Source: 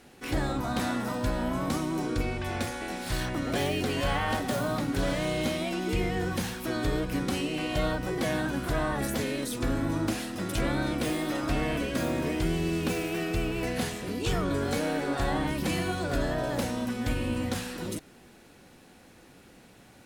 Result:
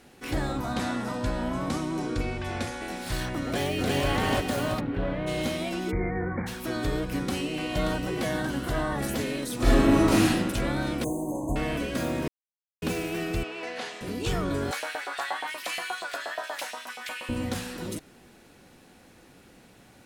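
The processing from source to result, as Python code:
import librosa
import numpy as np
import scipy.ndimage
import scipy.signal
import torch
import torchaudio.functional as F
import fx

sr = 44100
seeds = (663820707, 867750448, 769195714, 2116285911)

y = fx.lowpass(x, sr, hz=9700.0, slope=12, at=(0.74, 2.82))
y = fx.echo_throw(y, sr, start_s=3.44, length_s=0.62, ms=340, feedback_pct=55, wet_db=-1.0)
y = fx.air_absorb(y, sr, metres=490.0, at=(4.79, 5.26), fade=0.02)
y = fx.brickwall_lowpass(y, sr, high_hz=2400.0, at=(5.9, 6.46), fade=0.02)
y = fx.echo_throw(y, sr, start_s=7.17, length_s=0.48, ms=580, feedback_pct=80, wet_db=-7.0)
y = fx.notch(y, sr, hz=2500.0, q=10.0, at=(8.27, 8.98))
y = fx.reverb_throw(y, sr, start_s=9.56, length_s=0.76, rt60_s=1.0, drr_db=-9.5)
y = fx.brickwall_bandstop(y, sr, low_hz=1100.0, high_hz=6100.0, at=(11.04, 11.56))
y = fx.bandpass_edges(y, sr, low_hz=530.0, high_hz=5100.0, at=(13.43, 14.01))
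y = fx.filter_lfo_highpass(y, sr, shape='saw_up', hz=8.4, low_hz=710.0, high_hz=2800.0, q=1.8, at=(14.71, 17.29))
y = fx.edit(y, sr, fx.silence(start_s=12.28, length_s=0.54), tone=tone)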